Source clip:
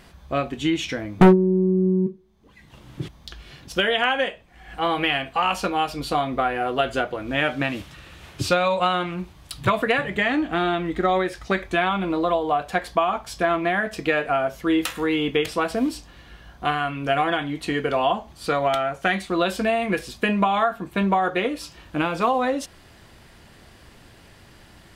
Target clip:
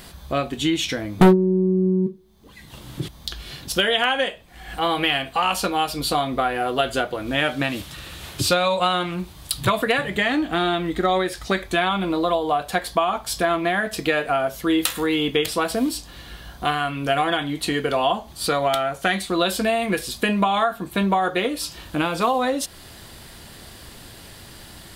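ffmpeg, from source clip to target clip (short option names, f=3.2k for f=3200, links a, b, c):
-filter_complex "[0:a]asplit=2[a][b];[b]acompressor=threshold=-35dB:ratio=6,volume=1dB[c];[a][c]amix=inputs=2:normalize=0,aexciter=amount=2.1:drive=5:freq=3.4k,volume=-1dB"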